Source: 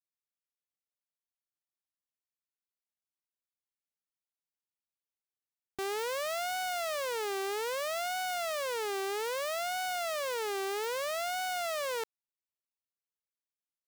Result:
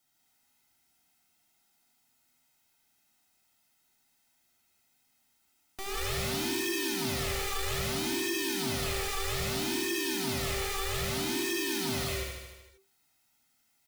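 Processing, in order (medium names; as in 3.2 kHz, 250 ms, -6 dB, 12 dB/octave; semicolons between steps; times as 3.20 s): high-pass 270 Hz 24 dB/octave; comb 1.7 ms, depth 99%; peak limiter -21.5 dBFS, peak gain reduction 4 dB; integer overflow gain 29.5 dB; frequency shift -390 Hz; feedback delay 76 ms, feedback 55%, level -5.5 dB; gated-style reverb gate 220 ms rising, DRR -3 dB; power-law waveshaper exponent 0.7; trim -5.5 dB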